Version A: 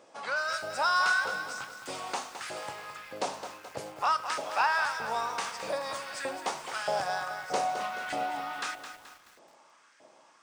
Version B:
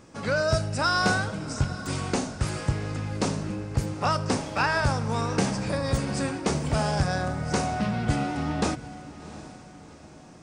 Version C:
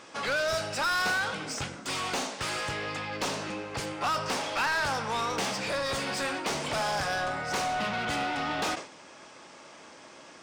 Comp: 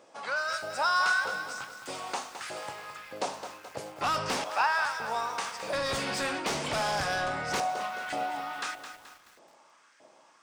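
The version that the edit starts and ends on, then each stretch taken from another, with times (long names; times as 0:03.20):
A
0:04.01–0:04.44: punch in from C
0:05.73–0:07.60: punch in from C
not used: B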